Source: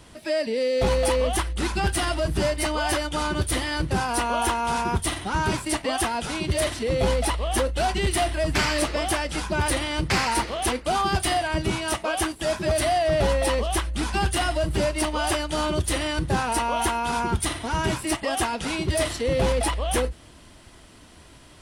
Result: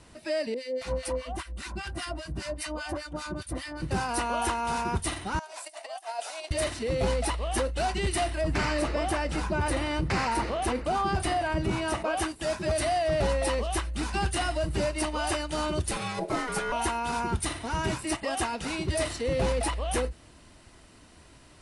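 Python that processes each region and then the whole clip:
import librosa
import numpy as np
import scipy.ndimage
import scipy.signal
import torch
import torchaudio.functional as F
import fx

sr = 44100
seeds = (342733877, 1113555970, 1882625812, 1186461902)

y = fx.chain(x, sr, fx.notch_comb(f0_hz=430.0),
    fx.harmonic_tremolo(hz=5.0, depth_pct=100, crossover_hz=1100.0), at=(0.54, 3.82))
y = fx.chain(y, sr, fx.high_shelf(hz=2500.0, db=11.0),
    fx.over_compress(threshold_db=-26.0, ratio=-0.5),
    fx.ladder_highpass(hz=610.0, resonance_pct=75), at=(5.39, 6.51))
y = fx.chain(y, sr, fx.high_shelf(hz=2200.0, db=-9.0),
    fx.env_flatten(amount_pct=50), at=(8.41, 12.21))
y = fx.chain(y, sr, fx.comb(ms=6.2, depth=0.58),
    fx.ring_mod(carrier_hz=500.0), at=(15.91, 16.72))
y = scipy.signal.sosfilt(scipy.signal.butter(12, 11000.0, 'lowpass', fs=sr, output='sos'), y)
y = fx.notch(y, sr, hz=3300.0, q=12.0)
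y = F.gain(torch.from_numpy(y), -4.5).numpy()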